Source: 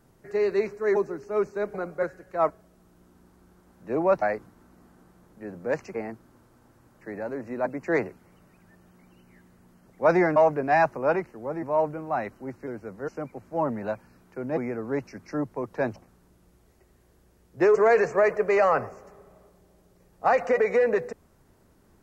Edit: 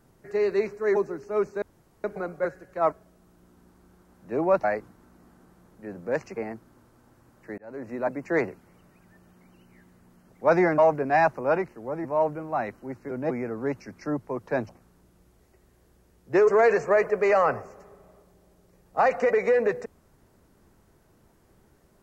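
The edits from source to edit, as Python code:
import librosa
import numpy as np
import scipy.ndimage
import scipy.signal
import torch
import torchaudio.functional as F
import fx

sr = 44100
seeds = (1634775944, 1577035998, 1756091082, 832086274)

y = fx.edit(x, sr, fx.insert_room_tone(at_s=1.62, length_s=0.42),
    fx.fade_in_span(start_s=7.16, length_s=0.3),
    fx.cut(start_s=12.69, length_s=1.69), tone=tone)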